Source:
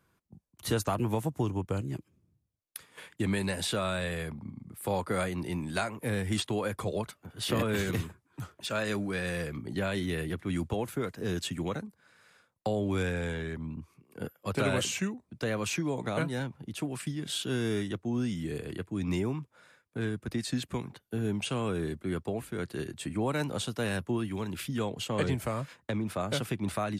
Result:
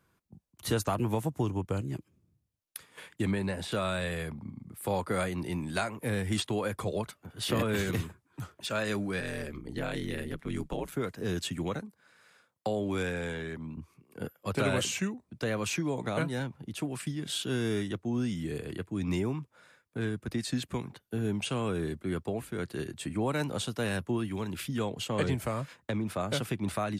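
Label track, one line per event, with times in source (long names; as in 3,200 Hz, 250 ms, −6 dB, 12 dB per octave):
3.310000	3.720000	high-shelf EQ 2,700 Hz −11 dB
9.200000	10.920000	ring modulation 68 Hz
11.790000	13.780000	high-pass filter 150 Hz 6 dB per octave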